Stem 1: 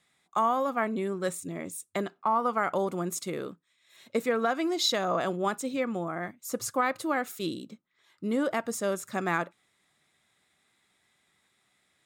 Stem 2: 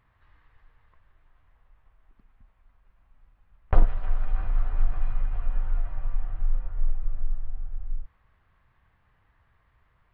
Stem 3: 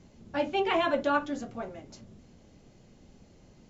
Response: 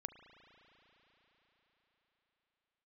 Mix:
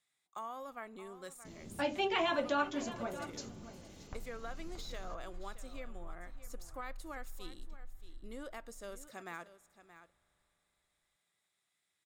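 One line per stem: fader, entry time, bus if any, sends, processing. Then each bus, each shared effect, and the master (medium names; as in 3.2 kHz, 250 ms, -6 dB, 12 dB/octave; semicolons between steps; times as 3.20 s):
-18.0 dB, 0.00 s, send -13 dB, echo send -13.5 dB, de-esser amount 80%; peaking EQ 200 Hz -5 dB 0.83 oct
-19.5 dB, 0.40 s, no send, echo send -6 dB, compression, threshold -19 dBFS, peak gain reduction 10.5 dB
0.0 dB, 1.45 s, send -16.5 dB, echo send -18 dB, none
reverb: on, RT60 5.0 s, pre-delay 35 ms
echo: delay 625 ms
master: treble shelf 2.8 kHz +8.5 dB; compression 1.5:1, threshold -42 dBFS, peak gain reduction 8.5 dB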